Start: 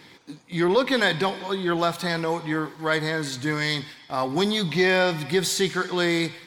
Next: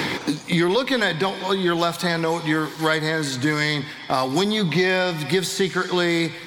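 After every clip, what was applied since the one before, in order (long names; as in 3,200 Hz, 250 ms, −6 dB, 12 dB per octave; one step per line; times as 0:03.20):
multiband upward and downward compressor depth 100%
level +1.5 dB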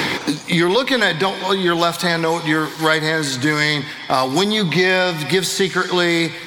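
low-shelf EQ 490 Hz −3.5 dB
level +5.5 dB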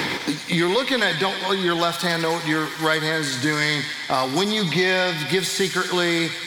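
delay with a high-pass on its return 101 ms, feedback 79%, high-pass 1,900 Hz, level −7 dB
level −4.5 dB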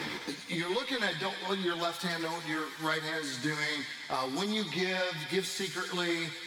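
harmonic generator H 3 −20 dB, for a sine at −5 dBFS
string-ensemble chorus
level −6 dB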